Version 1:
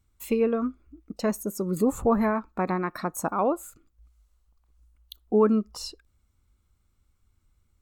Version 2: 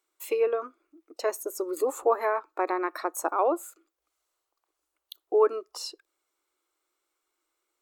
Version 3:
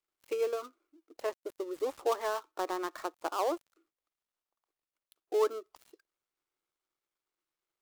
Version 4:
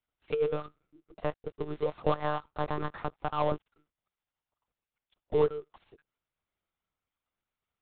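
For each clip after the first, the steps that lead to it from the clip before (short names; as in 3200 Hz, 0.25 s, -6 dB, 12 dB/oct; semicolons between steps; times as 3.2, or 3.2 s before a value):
elliptic high-pass 330 Hz, stop band 40 dB; gain +1 dB
switching dead time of 0.12 ms; gain -6.5 dB
monotone LPC vocoder at 8 kHz 150 Hz; gain +2.5 dB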